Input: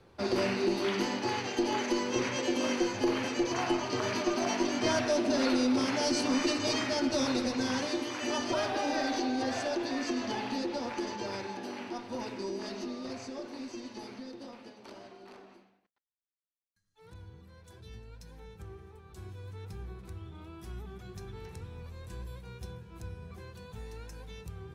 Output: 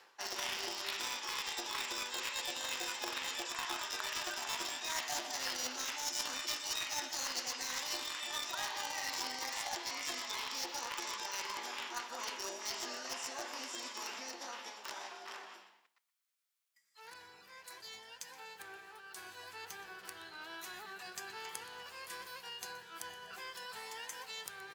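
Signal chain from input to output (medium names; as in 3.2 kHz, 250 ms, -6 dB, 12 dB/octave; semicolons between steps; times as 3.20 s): high-pass 890 Hz 12 dB/octave; dynamic bell 3.9 kHz, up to +5 dB, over -50 dBFS, Q 1; reverse; compression 6:1, threshold -49 dBFS, peak gain reduction 21 dB; reverse; formant shift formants +3 st; in parallel at -4 dB: bit crusher 7-bit; on the sum: feedback delay 123 ms, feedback 31%, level -18 dB; trim +9.5 dB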